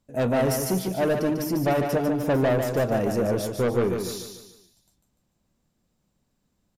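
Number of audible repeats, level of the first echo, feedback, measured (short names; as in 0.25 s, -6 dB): 4, -6.0 dB, 43%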